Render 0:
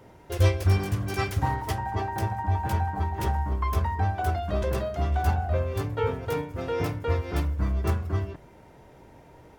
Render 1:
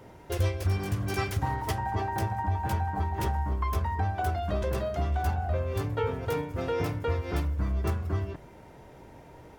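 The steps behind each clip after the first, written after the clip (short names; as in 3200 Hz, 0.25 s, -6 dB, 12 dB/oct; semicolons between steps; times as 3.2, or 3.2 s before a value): compressor 2.5:1, threshold -28 dBFS, peak gain reduction 9 dB; gain +1.5 dB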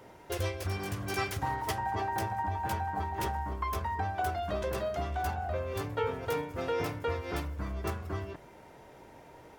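low shelf 240 Hz -9.5 dB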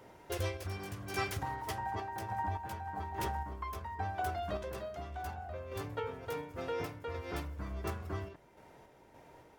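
random-step tremolo 3.5 Hz; gain -2.5 dB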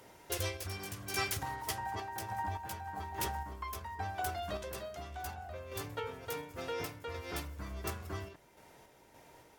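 bell 15000 Hz +11.5 dB 2.5 oct; gain -2.5 dB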